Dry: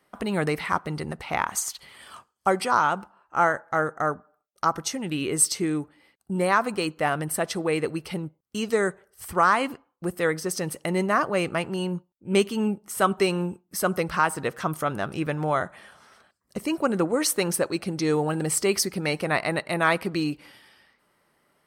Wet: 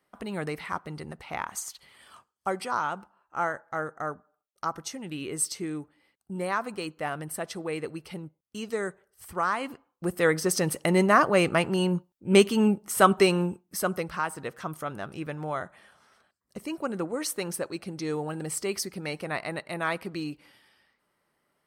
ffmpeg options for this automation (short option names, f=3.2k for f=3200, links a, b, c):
-af "volume=3dB,afade=t=in:st=9.61:d=0.86:silence=0.298538,afade=t=out:st=13.08:d=1.05:silence=0.298538"